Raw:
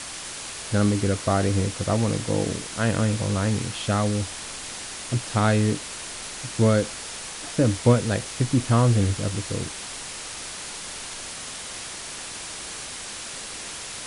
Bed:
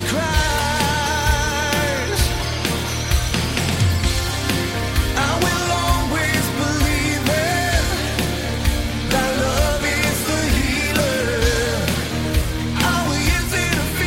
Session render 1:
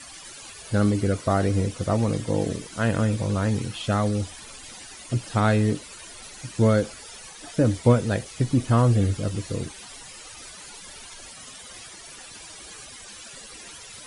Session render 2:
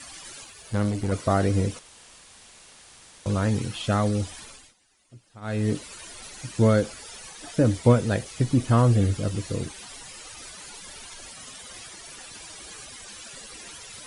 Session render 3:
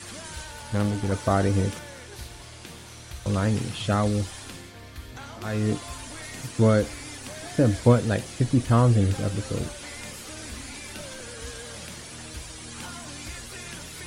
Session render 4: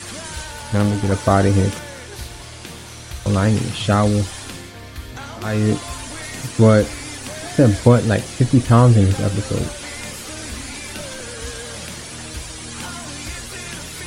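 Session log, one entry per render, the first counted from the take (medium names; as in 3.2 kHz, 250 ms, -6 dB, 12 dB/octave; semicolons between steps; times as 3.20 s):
noise reduction 14 dB, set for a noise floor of -36 dBFS
0.44–1.12 s: valve stage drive 16 dB, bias 0.75; 1.79–3.26 s: room tone; 4.40–5.75 s: dip -23.5 dB, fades 0.34 s
add bed -22 dB
trim +7.5 dB; peak limiter -1 dBFS, peak gain reduction 2.5 dB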